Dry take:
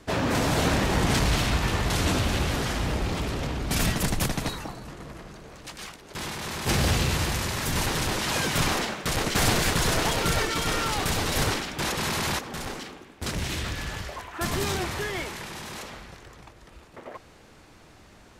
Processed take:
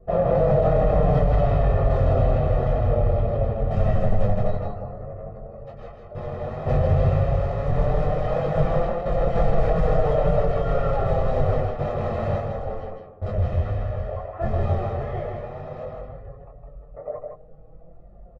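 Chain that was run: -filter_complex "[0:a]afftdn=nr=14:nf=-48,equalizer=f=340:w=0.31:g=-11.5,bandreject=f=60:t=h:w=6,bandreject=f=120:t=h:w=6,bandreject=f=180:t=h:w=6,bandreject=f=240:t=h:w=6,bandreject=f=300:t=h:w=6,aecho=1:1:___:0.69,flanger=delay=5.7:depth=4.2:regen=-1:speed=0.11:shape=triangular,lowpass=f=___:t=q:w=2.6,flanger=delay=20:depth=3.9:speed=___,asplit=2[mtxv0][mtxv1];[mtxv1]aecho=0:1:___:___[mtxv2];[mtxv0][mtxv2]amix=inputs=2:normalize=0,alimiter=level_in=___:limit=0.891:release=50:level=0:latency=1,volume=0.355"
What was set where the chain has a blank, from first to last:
1.6, 580, 2.1, 160, 0.596, 16.8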